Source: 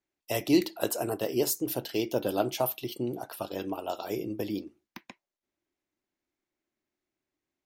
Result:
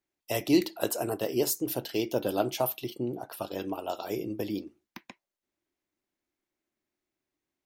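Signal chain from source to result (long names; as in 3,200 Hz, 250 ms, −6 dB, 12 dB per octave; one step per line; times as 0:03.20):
0:02.90–0:03.32: high-shelf EQ 2,100 Hz −8.5 dB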